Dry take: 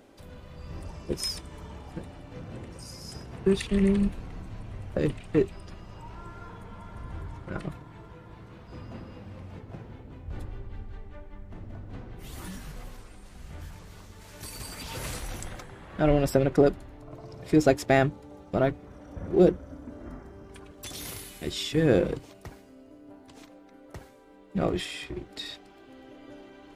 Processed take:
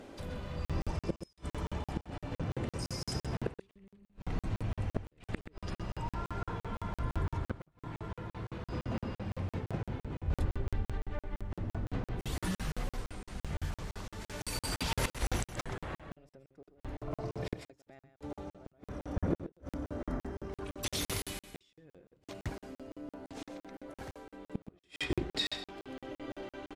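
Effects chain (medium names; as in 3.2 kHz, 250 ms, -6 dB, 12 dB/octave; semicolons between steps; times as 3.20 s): treble shelf 12 kHz -11.5 dB; inverted gate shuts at -25 dBFS, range -41 dB; on a send: delay 128 ms -11 dB; on the sum: crackling interface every 0.17 s, samples 2048, zero, from 0.65 s; trim +5.5 dB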